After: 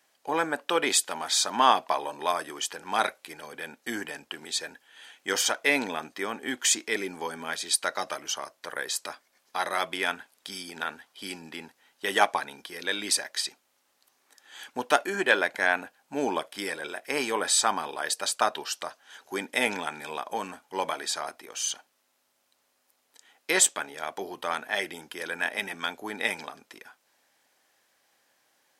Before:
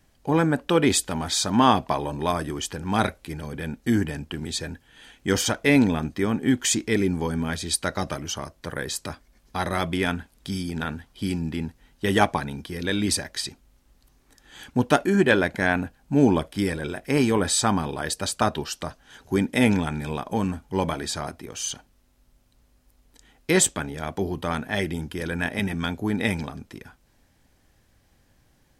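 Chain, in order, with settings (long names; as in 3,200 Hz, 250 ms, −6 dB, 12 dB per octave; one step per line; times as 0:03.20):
high-pass filter 610 Hz 12 dB per octave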